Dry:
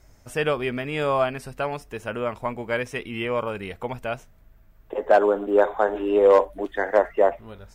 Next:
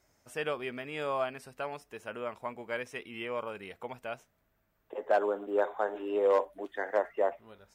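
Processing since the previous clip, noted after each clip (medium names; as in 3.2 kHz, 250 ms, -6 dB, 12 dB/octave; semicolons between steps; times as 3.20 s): high-pass 290 Hz 6 dB/octave; trim -9 dB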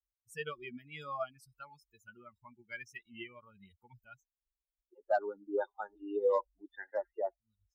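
expander on every frequency bin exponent 3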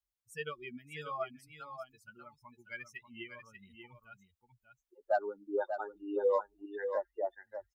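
delay 590 ms -8 dB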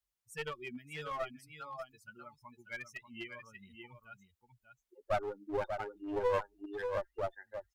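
one-sided clip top -40.5 dBFS; trim +1.5 dB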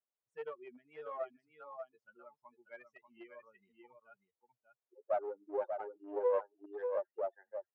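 ladder band-pass 620 Hz, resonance 35%; trim +8.5 dB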